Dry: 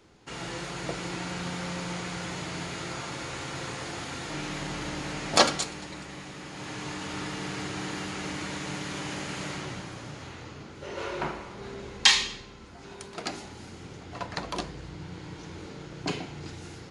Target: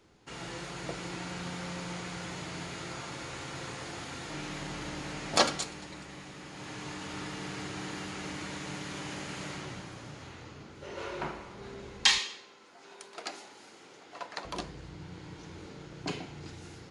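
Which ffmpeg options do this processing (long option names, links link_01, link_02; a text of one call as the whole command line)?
ffmpeg -i in.wav -filter_complex "[0:a]asettb=1/sr,asplit=3[link_01][link_02][link_03];[link_01]atrim=end=12.184[link_04];[link_02]atrim=start=12.18:end=14.45,asetpts=PTS-STARTPTS,afade=type=in:duration=0.004:curve=qsin,afade=type=out:start_time=2.266:duration=0.004:curve=qsin,highpass=410[link_05];[link_03]atrim=start=14.446[link_06];[link_04][link_05]acrossfade=duration=0.004:curve1=hsin:curve2=qsin[link_07];[link_07][link_06]acrossfade=duration=0.004:curve1=qsin:curve2=hsin,volume=-4.5dB" out.wav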